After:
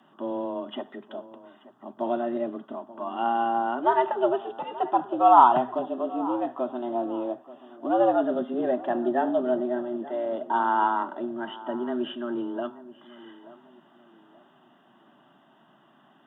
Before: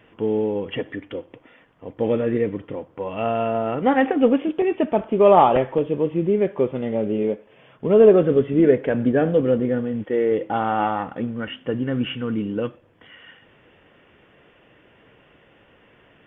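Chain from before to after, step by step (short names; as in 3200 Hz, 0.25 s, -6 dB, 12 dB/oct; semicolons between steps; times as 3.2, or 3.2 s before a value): fixed phaser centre 880 Hz, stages 4; frequency shift +120 Hz; darkening echo 0.881 s, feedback 34%, low-pass 1900 Hz, level -17 dB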